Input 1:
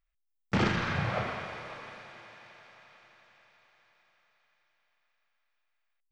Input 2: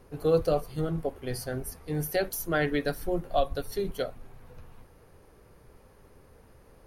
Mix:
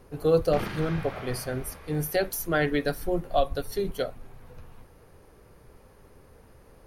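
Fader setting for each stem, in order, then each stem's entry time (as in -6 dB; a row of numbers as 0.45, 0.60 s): -7.0, +2.0 dB; 0.00, 0.00 s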